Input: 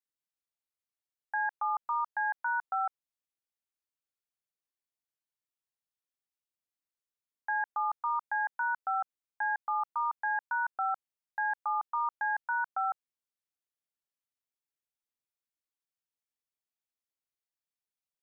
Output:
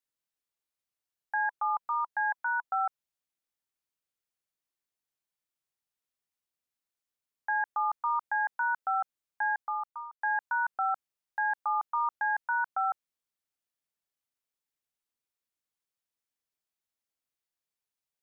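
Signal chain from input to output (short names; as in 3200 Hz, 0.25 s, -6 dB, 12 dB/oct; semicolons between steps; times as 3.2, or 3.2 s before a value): 1.44–2.8 notch 990 Hz, Q 12; 9.49–10.21 fade out; gain +2 dB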